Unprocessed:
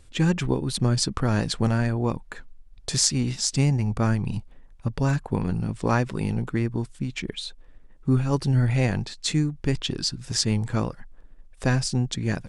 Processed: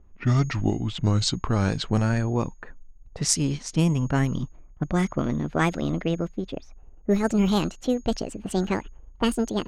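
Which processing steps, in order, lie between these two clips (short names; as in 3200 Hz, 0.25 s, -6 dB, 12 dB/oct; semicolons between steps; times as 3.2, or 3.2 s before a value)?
speed glide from 73% -> 185%; whine 6600 Hz -48 dBFS; low-pass opened by the level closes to 760 Hz, open at -16.5 dBFS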